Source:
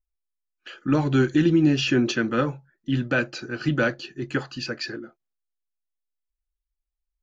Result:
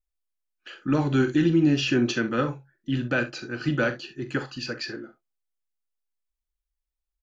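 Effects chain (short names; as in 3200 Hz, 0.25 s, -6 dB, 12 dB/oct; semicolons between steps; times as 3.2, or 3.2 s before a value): early reflections 42 ms -11.5 dB, 66 ms -15.5 dB; gain -2 dB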